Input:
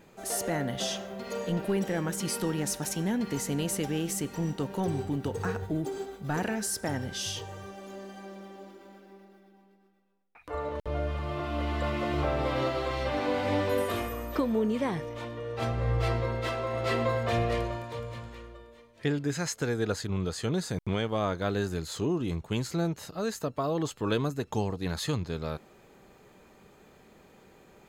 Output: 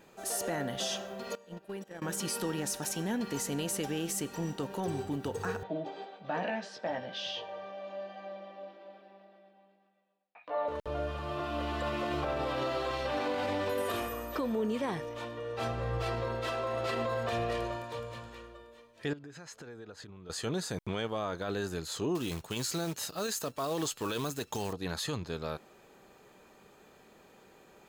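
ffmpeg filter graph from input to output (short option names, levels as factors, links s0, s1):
-filter_complex "[0:a]asettb=1/sr,asplit=3[s0][s1][s2];[s0]atrim=end=1.354[s3];[s1]atrim=start=1.35:end=2.02,asetpts=PTS-STARTPTS,afade=t=in:d=0.004:c=qsin,afade=t=out:st=0.666:d=0.004:c=qsin,agate=range=0.1:threshold=0.0398:ratio=16:release=100:detection=peak,acompressor=threshold=0.0126:ratio=2.5:attack=3.2:release=140:knee=1:detection=peak[s4];[s2]atrim=start=2.016[s5];[s3][s4]acrossfade=d=0.004:c1=hsin:c2=qsin[s6];[s6][s5]acrossfade=d=0.004:c1=qsin:c2=hsin,asettb=1/sr,asplit=3[s7][s8][s9];[s7]atrim=end=5.634[s10];[s8]atrim=start=5.63:end=10.68,asetpts=PTS-STARTPTS,afade=t=in:d=0.004:c=qsin,afade=t=out:st=5.046:d=0.004:c=qsin,highpass=f=170:w=0.5412,highpass=f=170:w=1.3066,equalizer=f=260:t=q:w=4:g=-7,equalizer=f=390:t=q:w=4:g=-9,equalizer=f=620:t=q:w=4:g=8,equalizer=f=1400:t=q:w=4:g=-7,lowpass=f=3800:w=0.5412,lowpass=f=3800:w=1.3066,asplit=2[s11][s12];[s12]adelay=17,volume=0.562[s13];[s11][s13]amix=inputs=2:normalize=0,atrim=end_sample=222705[s14];[s9]atrim=start=10.676[s15];[s10][s14]acrossfade=d=0.004:c1=hsin:c2=qsin[s16];[s16][s15]acrossfade=d=0.004:c1=qsin:c2=hsin,asettb=1/sr,asplit=3[s17][s18][s19];[s17]atrim=end=19.134[s20];[s18]atrim=start=19.13:end=20.3,asetpts=PTS-STARTPTS,afade=t=in:d=0.004:c=qsin,afade=t=out:st=1.166:d=0.004:c=qsin,lowpass=f=2800:p=1,acompressor=threshold=0.00891:ratio=8:attack=3.2:release=140:knee=1:detection=peak[s21];[s19]atrim=start=20.296[s22];[s20][s21]acrossfade=d=0.004:c1=hsin:c2=qsin[s23];[s23][s22]acrossfade=d=0.004:c1=qsin:c2=hsin,asettb=1/sr,asplit=3[s24][s25][s26];[s24]atrim=end=22.154[s27];[s25]atrim=start=22.15:end=24.73,asetpts=PTS-STARTPTS,afade=t=in:d=0.004:c=qsin,afade=t=out:st=2.576:d=0.004:c=qsin,highshelf=f=2500:g=9.5,acrusher=bits=4:mode=log:mix=0:aa=0.000001[s28];[s26]atrim=start=24.726[s29];[s27][s28]acrossfade=d=0.004:c1=hsin:c2=qsin[s30];[s30][s29]acrossfade=d=0.004:c1=qsin:c2=hsin,lowshelf=f=230:g=-8.5,alimiter=level_in=1.06:limit=0.0631:level=0:latency=1:release=19,volume=0.944,bandreject=f=2100:w=13"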